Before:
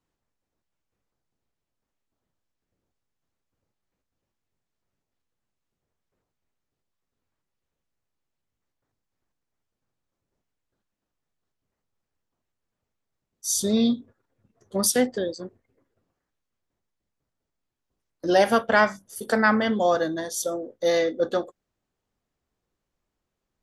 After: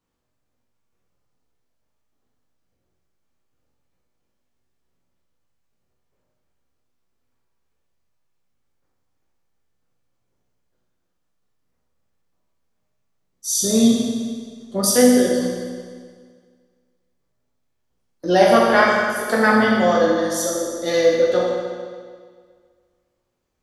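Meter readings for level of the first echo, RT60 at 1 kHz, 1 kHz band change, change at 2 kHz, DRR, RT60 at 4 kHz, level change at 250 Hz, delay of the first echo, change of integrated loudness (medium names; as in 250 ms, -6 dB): no echo, 1.8 s, +5.5 dB, +5.5 dB, -3.5 dB, 1.7 s, +7.5 dB, no echo, +6.0 dB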